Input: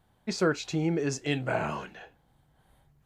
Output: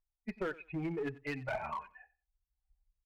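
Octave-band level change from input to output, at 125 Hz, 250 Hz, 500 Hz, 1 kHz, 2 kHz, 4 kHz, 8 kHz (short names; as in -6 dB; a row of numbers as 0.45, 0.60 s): -11.5 dB, -10.0 dB, -9.5 dB, -6.0 dB, -7.5 dB, -18.0 dB, under -25 dB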